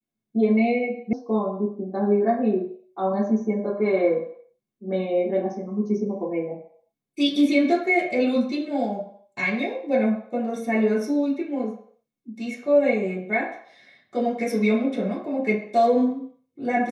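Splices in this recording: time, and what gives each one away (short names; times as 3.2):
1.13 sound cut off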